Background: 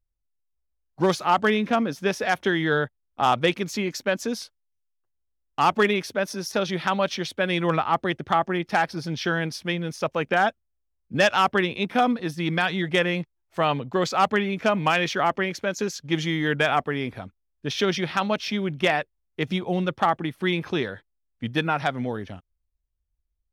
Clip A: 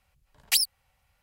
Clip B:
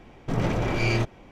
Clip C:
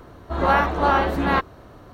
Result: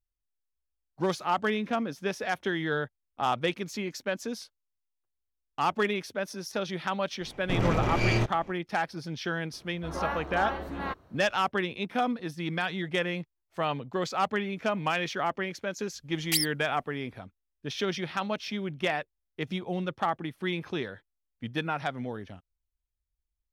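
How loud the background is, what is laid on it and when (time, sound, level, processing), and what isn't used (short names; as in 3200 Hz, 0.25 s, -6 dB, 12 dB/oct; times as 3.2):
background -7 dB
7.21 add B -1.5 dB
9.53 add C -14 dB
15.8 add A -4 dB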